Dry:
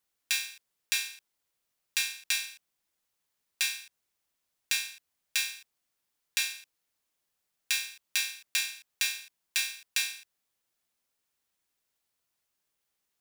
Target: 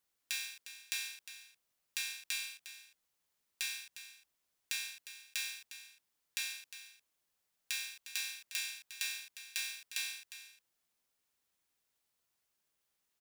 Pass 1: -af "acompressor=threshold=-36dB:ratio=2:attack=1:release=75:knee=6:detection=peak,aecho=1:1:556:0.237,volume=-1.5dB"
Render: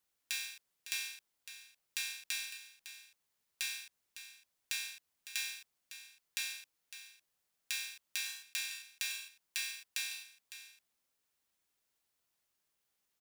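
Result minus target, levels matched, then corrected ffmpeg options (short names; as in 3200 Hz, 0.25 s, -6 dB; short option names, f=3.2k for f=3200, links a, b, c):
echo 0.2 s late
-af "acompressor=threshold=-36dB:ratio=2:attack=1:release=75:knee=6:detection=peak,aecho=1:1:356:0.237,volume=-1.5dB"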